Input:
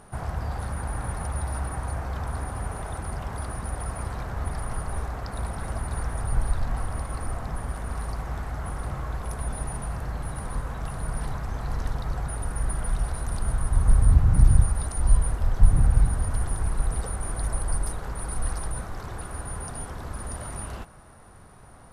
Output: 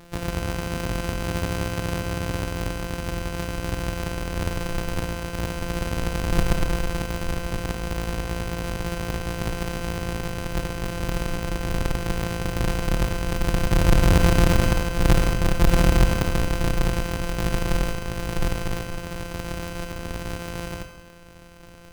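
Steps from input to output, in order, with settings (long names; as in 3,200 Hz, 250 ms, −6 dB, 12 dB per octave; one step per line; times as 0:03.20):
samples sorted by size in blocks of 256 samples
four-comb reverb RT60 0.88 s, combs from 25 ms, DRR 7 dB
brickwall limiter −11.5 dBFS, peak gain reduction 8 dB
level +2.5 dB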